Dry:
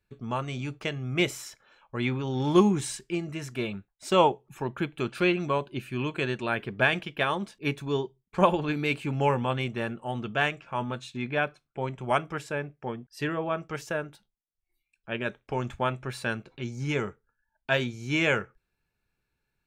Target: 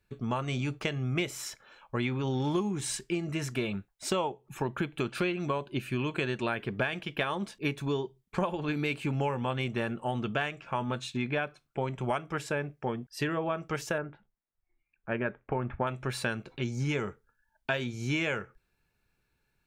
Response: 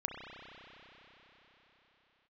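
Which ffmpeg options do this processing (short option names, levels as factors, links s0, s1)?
-filter_complex "[0:a]asettb=1/sr,asplit=3[s0][s1][s2];[s0]atrim=end=13.984[s3];[s1]atrim=start=13.98:end=15.87,asetpts=PTS-STARTPTS,afade=t=in:d=0.004:c=qsin,afade=t=out:st=1.886:d=0.004:c=qsin,lowpass=f=2100:w=0.5412,lowpass=f=2100:w=1.3066[s4];[s2]atrim=start=15.866[s5];[s3][s4]acrossfade=d=0.004:c1=hsin:c2=qsin[s6];[s6][s5]acrossfade=d=0.004:c1=qsin:c2=hsin,acompressor=threshold=0.0282:ratio=8,volume=1.58"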